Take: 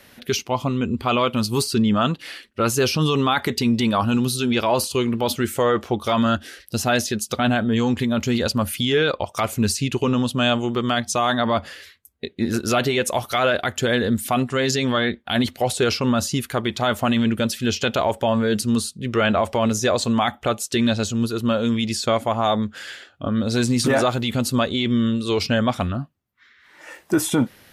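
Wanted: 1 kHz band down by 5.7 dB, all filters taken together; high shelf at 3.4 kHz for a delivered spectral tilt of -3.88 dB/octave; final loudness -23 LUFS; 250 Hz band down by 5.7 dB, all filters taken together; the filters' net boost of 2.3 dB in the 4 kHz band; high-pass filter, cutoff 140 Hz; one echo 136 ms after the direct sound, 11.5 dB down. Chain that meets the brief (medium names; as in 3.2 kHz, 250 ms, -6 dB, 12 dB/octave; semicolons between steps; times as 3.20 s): high-pass 140 Hz; peaking EQ 250 Hz -5.5 dB; peaking EQ 1 kHz -7.5 dB; treble shelf 3.4 kHz -7 dB; peaking EQ 4 kHz +8 dB; delay 136 ms -11.5 dB; trim +1 dB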